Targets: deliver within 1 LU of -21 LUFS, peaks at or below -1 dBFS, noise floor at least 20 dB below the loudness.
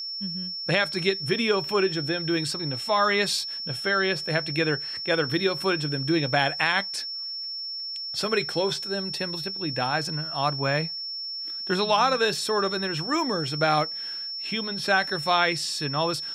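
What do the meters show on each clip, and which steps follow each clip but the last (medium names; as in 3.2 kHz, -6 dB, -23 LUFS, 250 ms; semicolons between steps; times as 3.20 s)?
tick rate 17 per s; steady tone 5.4 kHz; tone level -31 dBFS; loudness -25.5 LUFS; peak level -7.5 dBFS; loudness target -21.0 LUFS
-> de-click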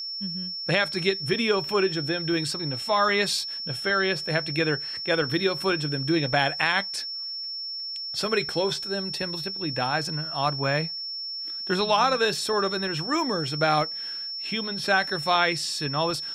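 tick rate 0.061 per s; steady tone 5.4 kHz; tone level -31 dBFS
-> band-stop 5.4 kHz, Q 30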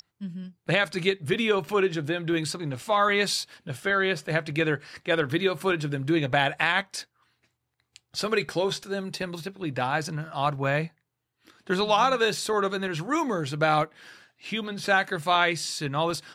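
steady tone not found; loudness -26.0 LUFS; peak level -8.0 dBFS; loudness target -21.0 LUFS
-> trim +5 dB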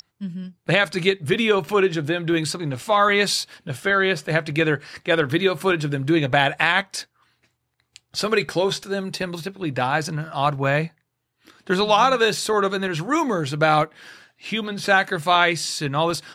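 loudness -21.0 LUFS; peak level -3.0 dBFS; noise floor -74 dBFS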